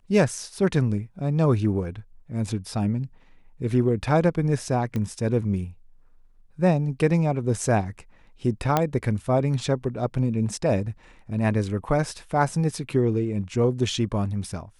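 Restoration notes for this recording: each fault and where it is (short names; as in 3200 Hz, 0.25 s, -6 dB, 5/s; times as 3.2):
4.96 pop -17 dBFS
8.77 pop -7 dBFS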